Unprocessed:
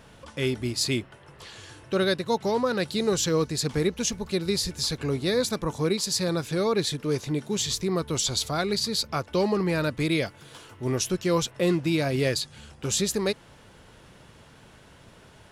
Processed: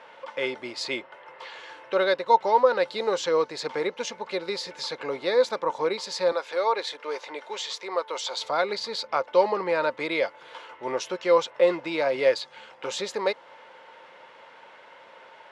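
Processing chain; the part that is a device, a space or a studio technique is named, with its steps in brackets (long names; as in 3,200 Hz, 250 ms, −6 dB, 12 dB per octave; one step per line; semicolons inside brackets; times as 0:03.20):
tin-can telephone (band-pass filter 670–2,800 Hz; hollow resonant body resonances 530/910/2,100 Hz, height 10 dB, ringing for 45 ms)
0:06.32–0:08.37: high-pass filter 490 Hz 12 dB per octave
dynamic equaliser 2,200 Hz, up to −5 dB, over −45 dBFS, Q 1.1
level +5.5 dB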